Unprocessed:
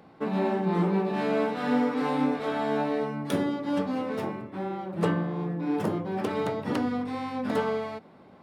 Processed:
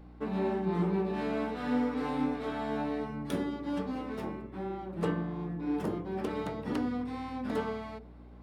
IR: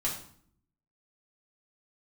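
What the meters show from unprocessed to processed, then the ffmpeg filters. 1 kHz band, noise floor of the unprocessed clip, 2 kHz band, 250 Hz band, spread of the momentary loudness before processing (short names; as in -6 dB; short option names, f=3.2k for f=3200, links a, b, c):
-6.5 dB, -52 dBFS, -6.5 dB, -4.5 dB, 7 LU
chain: -filter_complex "[0:a]aeval=exprs='val(0)+0.00631*(sin(2*PI*60*n/s)+sin(2*PI*2*60*n/s)/2+sin(2*PI*3*60*n/s)/3+sin(2*PI*4*60*n/s)/4+sin(2*PI*5*60*n/s)/5)':c=same,asplit=2[a][b];[b]lowpass=f=450:t=q:w=4.7[c];[1:a]atrim=start_sample=2205[d];[c][d]afir=irnorm=-1:irlink=0,volume=-19dB[e];[a][e]amix=inputs=2:normalize=0,volume=-6.5dB"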